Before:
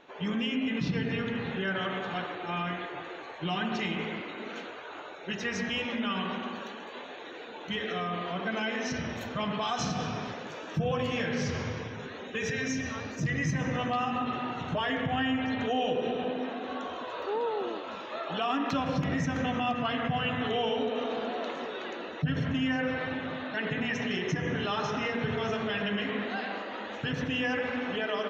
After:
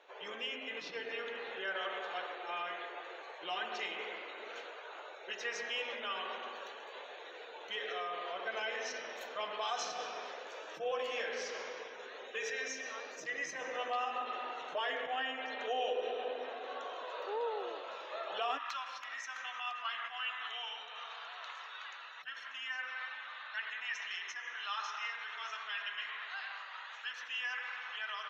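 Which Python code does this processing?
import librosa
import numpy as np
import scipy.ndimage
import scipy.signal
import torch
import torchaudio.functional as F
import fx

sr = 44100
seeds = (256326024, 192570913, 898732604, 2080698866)

y = fx.cheby1_highpass(x, sr, hz=fx.steps((0.0, 470.0), (18.57, 1100.0)), order=3)
y = F.gain(torch.from_numpy(y), -4.5).numpy()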